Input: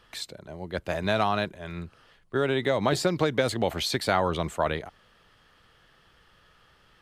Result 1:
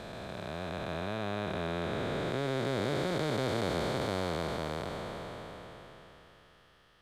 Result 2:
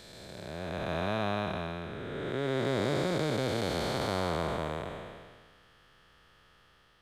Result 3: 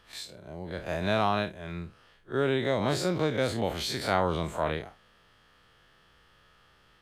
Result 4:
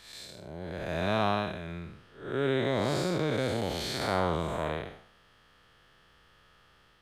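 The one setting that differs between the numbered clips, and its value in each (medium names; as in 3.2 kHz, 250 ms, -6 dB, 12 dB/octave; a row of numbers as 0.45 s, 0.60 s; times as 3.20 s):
spectral blur, width: 1810 ms, 729 ms, 81 ms, 234 ms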